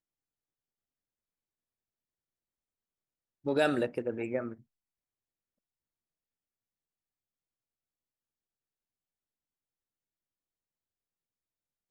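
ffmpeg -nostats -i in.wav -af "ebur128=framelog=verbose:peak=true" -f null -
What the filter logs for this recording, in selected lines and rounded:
Integrated loudness:
  I:         -31.9 LUFS
  Threshold: -42.8 LUFS
Loudness range:
  LRA:         8.9 LU
  Threshold: -56.9 LUFS
  LRA low:   -44.4 LUFS
  LRA high:  -35.5 LUFS
True peak:
  Peak:      -13.4 dBFS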